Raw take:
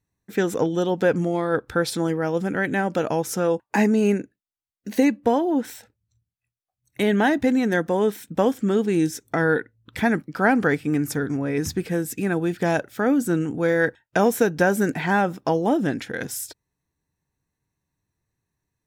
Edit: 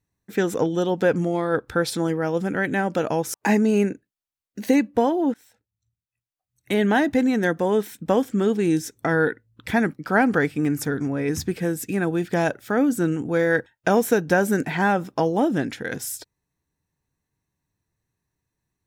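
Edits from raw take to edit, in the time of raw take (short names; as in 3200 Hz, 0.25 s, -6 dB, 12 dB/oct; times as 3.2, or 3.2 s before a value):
3.34–3.63 cut
5.63–7.12 fade in, from -20 dB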